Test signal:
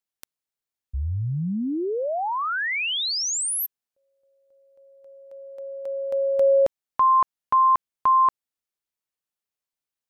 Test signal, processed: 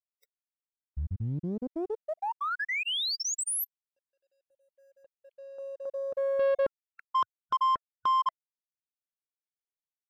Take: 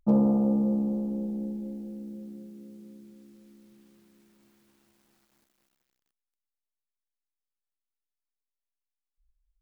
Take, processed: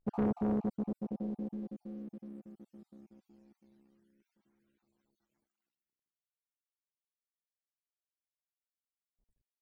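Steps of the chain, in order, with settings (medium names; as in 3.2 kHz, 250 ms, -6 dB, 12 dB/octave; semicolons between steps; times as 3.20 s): random holes in the spectrogram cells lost 34%; bit crusher 12-bit; loudest bins only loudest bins 64; waveshaping leveller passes 1; loudspeaker Doppler distortion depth 0.75 ms; trim -8 dB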